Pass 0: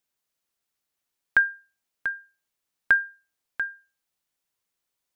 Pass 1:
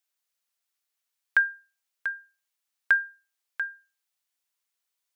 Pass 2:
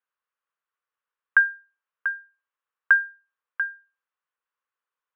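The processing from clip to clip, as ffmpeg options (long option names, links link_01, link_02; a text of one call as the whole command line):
ffmpeg -i in.wav -af "highpass=frequency=1200:poles=1" out.wav
ffmpeg -i in.wav -af "highpass=430,equalizer=frequency=490:width_type=q:width=4:gain=7,equalizer=frequency=700:width_type=q:width=4:gain=-6,equalizer=frequency=1100:width_type=q:width=4:gain=9,equalizer=frequency=1500:width_type=q:width=4:gain=5,equalizer=frequency=2200:width_type=q:width=4:gain=-5,lowpass=frequency=2500:width=0.5412,lowpass=frequency=2500:width=1.3066" out.wav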